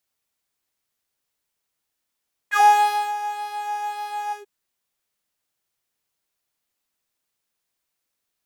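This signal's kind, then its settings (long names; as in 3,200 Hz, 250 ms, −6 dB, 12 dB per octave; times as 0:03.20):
subtractive patch with pulse-width modulation G#5, detune 14 cents, sub −3 dB, noise −28 dB, filter highpass, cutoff 360 Hz, Q 9, filter envelope 2.5 octaves, filter decay 0.09 s, filter sustain 45%, attack 59 ms, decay 0.56 s, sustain −15.5 dB, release 0.13 s, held 1.81 s, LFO 1.8 Hz, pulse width 16%, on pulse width 5%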